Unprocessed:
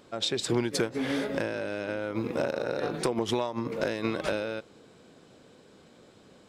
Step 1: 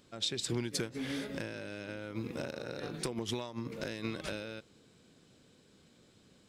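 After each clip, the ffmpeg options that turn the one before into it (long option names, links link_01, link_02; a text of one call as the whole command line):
ffmpeg -i in.wav -af "equalizer=frequency=720:width_type=o:width=2.7:gain=-10.5,volume=-2.5dB" out.wav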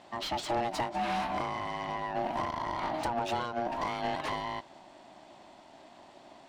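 ffmpeg -i in.wav -filter_complex "[0:a]aeval=exprs='val(0)*sin(2*PI*470*n/s)':channel_layout=same,asplit=2[link_01][link_02];[link_02]highpass=frequency=720:poles=1,volume=22dB,asoftclip=type=tanh:threshold=-22dB[link_03];[link_01][link_03]amix=inputs=2:normalize=0,lowpass=frequency=1200:poles=1,volume=-6dB,volume=2.5dB" out.wav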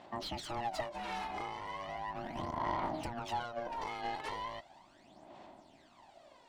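ffmpeg -i in.wav -af "aphaser=in_gain=1:out_gain=1:delay=2.4:decay=0.62:speed=0.37:type=sinusoidal,volume=-8dB" out.wav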